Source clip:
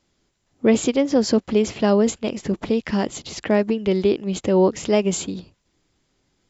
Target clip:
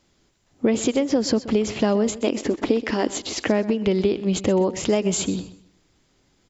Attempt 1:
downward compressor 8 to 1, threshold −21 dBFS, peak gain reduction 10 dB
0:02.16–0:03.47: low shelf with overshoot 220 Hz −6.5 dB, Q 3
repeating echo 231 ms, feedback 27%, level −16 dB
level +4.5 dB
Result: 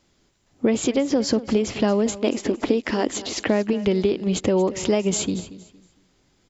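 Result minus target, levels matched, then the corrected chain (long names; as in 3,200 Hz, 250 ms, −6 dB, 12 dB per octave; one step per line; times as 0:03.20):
echo 104 ms late
downward compressor 8 to 1, threshold −21 dBFS, peak gain reduction 10 dB
0:02.16–0:03.47: low shelf with overshoot 220 Hz −6.5 dB, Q 3
repeating echo 127 ms, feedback 27%, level −16 dB
level +4.5 dB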